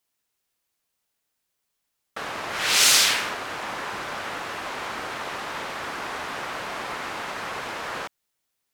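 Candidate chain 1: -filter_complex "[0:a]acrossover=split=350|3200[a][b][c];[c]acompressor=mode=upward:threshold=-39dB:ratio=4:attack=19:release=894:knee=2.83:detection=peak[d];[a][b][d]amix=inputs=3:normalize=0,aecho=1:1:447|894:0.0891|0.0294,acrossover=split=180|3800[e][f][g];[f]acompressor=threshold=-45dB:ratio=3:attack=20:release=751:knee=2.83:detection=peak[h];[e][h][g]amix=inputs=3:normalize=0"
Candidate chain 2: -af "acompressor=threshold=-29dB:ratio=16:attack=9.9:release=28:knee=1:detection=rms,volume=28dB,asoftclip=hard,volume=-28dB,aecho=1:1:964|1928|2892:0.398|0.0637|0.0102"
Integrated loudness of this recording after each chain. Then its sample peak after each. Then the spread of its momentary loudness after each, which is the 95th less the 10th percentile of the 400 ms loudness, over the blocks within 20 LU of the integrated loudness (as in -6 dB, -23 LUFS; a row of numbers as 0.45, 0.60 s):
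-28.5, -31.5 LUFS; -7.5, -24.5 dBFS; 19, 5 LU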